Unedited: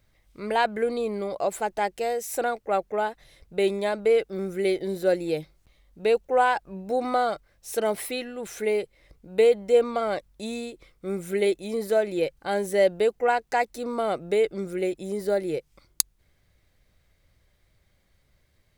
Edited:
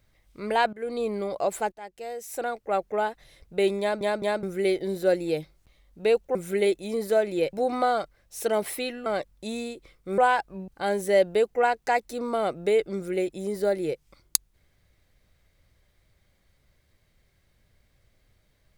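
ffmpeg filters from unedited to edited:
ffmpeg -i in.wav -filter_complex "[0:a]asplit=11[link_01][link_02][link_03][link_04][link_05][link_06][link_07][link_08][link_09][link_10][link_11];[link_01]atrim=end=0.73,asetpts=PTS-STARTPTS,afade=type=out:start_time=0.726:duration=0.004:curve=hsin:silence=0.0944061[link_12];[link_02]atrim=start=0.73:end=1.72,asetpts=PTS-STARTPTS,afade=type=in:duration=0.3:silence=0.0944061,afade=type=out:start_time=0.986:duration=0.004:curve=hsin:silence=0.0891251[link_13];[link_03]atrim=start=1.72:end=4.012,asetpts=PTS-STARTPTS,afade=type=in:duration=1.2:silence=0.0891251[link_14];[link_04]atrim=start=3.798:end=4.012[link_15];[link_05]atrim=start=3.798:end=4.012[link_16];[link_06]atrim=start=4.428:end=6.352[link_17];[link_07]atrim=start=11.148:end=12.332[link_18];[link_08]atrim=start=6.848:end=8.382[link_19];[link_09]atrim=start=10.028:end=11.152[link_20];[link_10]atrim=start=6.348:end=6.852[link_21];[link_11]atrim=start=12.328[link_22];[link_12][link_13][link_14]concat=n=3:v=0:a=1[link_23];[link_23][link_15]acrossfade=duration=0.004:curve1=hsin:curve2=hsin[link_24];[link_24][link_16]acrossfade=duration=0.004:curve1=hsin:curve2=hsin[link_25];[link_25][link_17]acrossfade=duration=0.004:curve1=hsin:curve2=hsin[link_26];[link_26][link_18]acrossfade=duration=0.004:curve1=hsin:curve2=hsin[link_27];[link_27][link_19]acrossfade=duration=0.004:curve1=hsin:curve2=hsin[link_28];[link_28][link_20]acrossfade=duration=0.004:curve1=hsin:curve2=hsin[link_29];[link_29][link_21]acrossfade=duration=0.004:curve1=hsin:curve2=hsin[link_30];[link_30][link_22]acrossfade=duration=0.004:curve1=hsin:curve2=hsin" out.wav

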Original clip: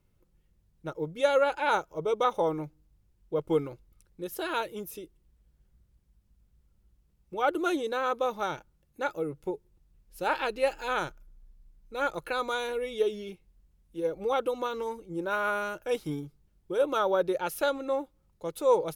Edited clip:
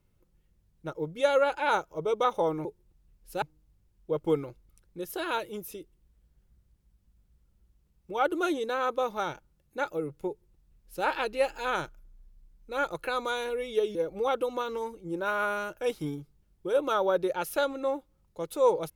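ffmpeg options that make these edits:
ffmpeg -i in.wav -filter_complex "[0:a]asplit=4[link_01][link_02][link_03][link_04];[link_01]atrim=end=2.652[link_05];[link_02]atrim=start=9.508:end=10.282[link_06];[link_03]atrim=start=2.648:end=13.182[link_07];[link_04]atrim=start=13.998[link_08];[link_05][link_06]acrossfade=duration=0.004:curve1=hsin:curve2=hsin[link_09];[link_09][link_07]acrossfade=duration=0.004:curve1=hsin:curve2=hsin[link_10];[link_10][link_08]acrossfade=duration=0.004:curve1=hsin:curve2=hsin" out.wav

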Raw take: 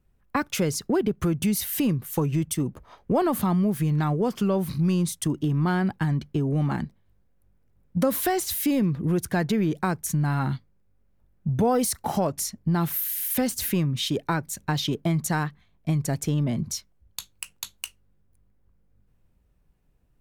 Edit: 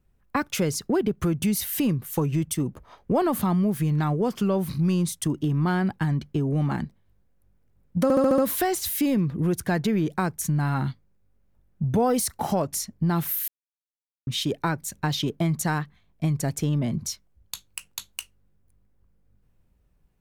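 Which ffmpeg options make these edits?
ffmpeg -i in.wav -filter_complex "[0:a]asplit=8[link_01][link_02][link_03][link_04][link_05][link_06][link_07][link_08];[link_01]atrim=end=8.102[link_09];[link_02]atrim=start=8.028:end=8.102[link_10];[link_03]atrim=start=8.028:end=8.102[link_11];[link_04]atrim=start=8.028:end=8.102[link_12];[link_05]atrim=start=8.028:end=8.102[link_13];[link_06]atrim=start=8.028:end=13.13,asetpts=PTS-STARTPTS,afade=type=out:start_time=5.098:duration=0.004:curve=hsin[link_14];[link_07]atrim=start=13.13:end=13.92,asetpts=PTS-STARTPTS,volume=0[link_15];[link_08]atrim=start=13.92,asetpts=PTS-STARTPTS,afade=type=in:duration=0.004:curve=hsin[link_16];[link_09][link_10]acrossfade=duration=0.004:curve1=hsin:curve2=hsin[link_17];[link_17][link_11]acrossfade=duration=0.004:curve1=hsin:curve2=hsin[link_18];[link_18][link_12]acrossfade=duration=0.004:curve1=hsin:curve2=hsin[link_19];[link_19][link_13]acrossfade=duration=0.004:curve1=hsin:curve2=hsin[link_20];[link_14][link_15][link_16]concat=n=3:v=0:a=1[link_21];[link_20][link_21]acrossfade=duration=0.004:curve1=hsin:curve2=hsin" out.wav

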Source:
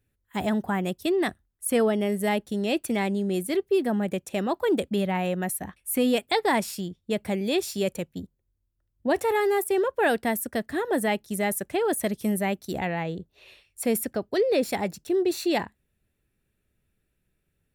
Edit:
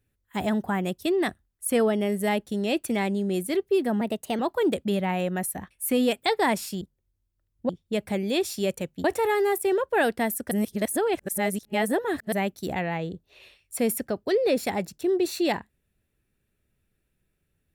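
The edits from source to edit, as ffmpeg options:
ffmpeg -i in.wav -filter_complex "[0:a]asplit=8[link_01][link_02][link_03][link_04][link_05][link_06][link_07][link_08];[link_01]atrim=end=4.014[link_09];[link_02]atrim=start=4.01:end=4.45,asetpts=PTS-STARTPTS,asetrate=50715,aresample=44100,atrim=end_sample=16873,asetpts=PTS-STARTPTS[link_10];[link_03]atrim=start=4.446:end=6.872[link_11];[link_04]atrim=start=8.218:end=9.102[link_12];[link_05]atrim=start=6.868:end=8.222[link_13];[link_06]atrim=start=9.098:end=10.572[link_14];[link_07]atrim=start=10.568:end=12.382,asetpts=PTS-STARTPTS,areverse[link_15];[link_08]atrim=start=12.378[link_16];[link_09][link_10]acrossfade=duration=0.004:curve1=hsin:curve2=hsin[link_17];[link_17][link_11]acrossfade=duration=0.004:curve1=hsin:curve2=hsin[link_18];[link_18][link_12]acrossfade=duration=0.004:curve1=hsin:curve2=hsin[link_19];[link_19][link_13]acrossfade=duration=0.004:curve1=hsin:curve2=hsin[link_20];[link_20][link_14]acrossfade=duration=0.004:curve1=hsin:curve2=hsin[link_21];[link_21][link_15]acrossfade=duration=0.004:curve1=hsin:curve2=hsin[link_22];[link_22][link_16]acrossfade=duration=0.004:curve1=hsin:curve2=hsin" out.wav

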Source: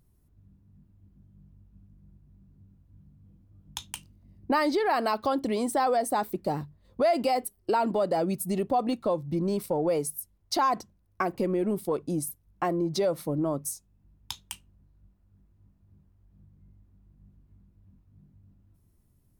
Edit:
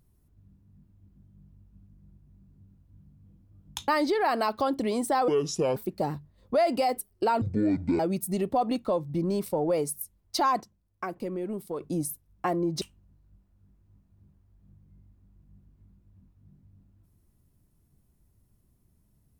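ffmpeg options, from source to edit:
ffmpeg -i in.wav -filter_complex "[0:a]asplit=9[link_01][link_02][link_03][link_04][link_05][link_06][link_07][link_08][link_09];[link_01]atrim=end=3.882[link_10];[link_02]atrim=start=4.528:end=5.934[link_11];[link_03]atrim=start=5.93:end=6.23,asetpts=PTS-STARTPTS,asetrate=27342,aresample=44100[link_12];[link_04]atrim=start=6.226:end=7.884[link_13];[link_05]atrim=start=7.88:end=8.17,asetpts=PTS-STARTPTS,asetrate=22050,aresample=44100[link_14];[link_06]atrim=start=8.166:end=10.782[link_15];[link_07]atrim=start=10.778:end=11.982,asetpts=PTS-STARTPTS,volume=-6dB[link_16];[link_08]atrim=start=11.978:end=12.992[link_17];[link_09]atrim=start=14.518[link_18];[link_10][link_11]acrossfade=duration=0.004:curve1=hsin:curve2=hsin[link_19];[link_19][link_12]acrossfade=duration=0.004:curve1=hsin:curve2=hsin[link_20];[link_20][link_13]acrossfade=duration=0.004:curve1=hsin:curve2=hsin[link_21];[link_21][link_14]acrossfade=duration=0.004:curve1=hsin:curve2=hsin[link_22];[link_22][link_15]acrossfade=duration=0.004:curve1=hsin:curve2=hsin[link_23];[link_23][link_16]acrossfade=duration=0.004:curve1=hsin:curve2=hsin[link_24];[link_24][link_17]acrossfade=duration=0.004:curve1=hsin:curve2=hsin[link_25];[link_25][link_18]acrossfade=duration=0.004:curve1=hsin:curve2=hsin" out.wav

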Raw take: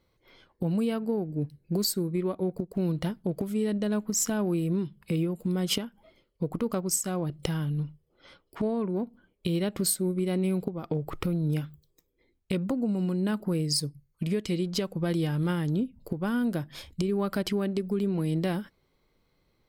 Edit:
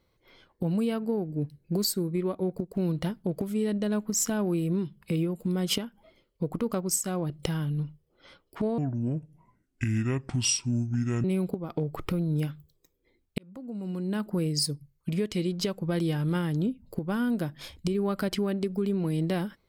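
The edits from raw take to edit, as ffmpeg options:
ffmpeg -i in.wav -filter_complex "[0:a]asplit=4[link_01][link_02][link_03][link_04];[link_01]atrim=end=8.784[link_05];[link_02]atrim=start=8.78:end=10.38,asetpts=PTS-STARTPTS,asetrate=28665,aresample=44100[link_06];[link_03]atrim=start=10.376:end=12.52,asetpts=PTS-STARTPTS,afade=type=out:start_time=2.14:duration=0.004:curve=hsin[link_07];[link_04]atrim=start=12.52,asetpts=PTS-STARTPTS,afade=type=in:duration=0.97[link_08];[link_05][link_06]acrossfade=duration=0.004:curve1=hsin:curve2=hsin[link_09];[link_07][link_08]concat=n=2:v=0:a=1[link_10];[link_09][link_10]acrossfade=duration=0.004:curve1=hsin:curve2=hsin" out.wav

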